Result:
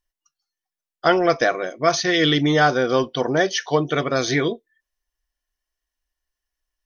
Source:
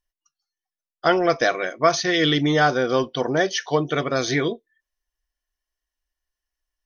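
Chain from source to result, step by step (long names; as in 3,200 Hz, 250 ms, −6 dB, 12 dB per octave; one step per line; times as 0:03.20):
0:01.43–0:01.86: parametric band 5,400 Hz → 930 Hz −9.5 dB 1.2 octaves
level +1.5 dB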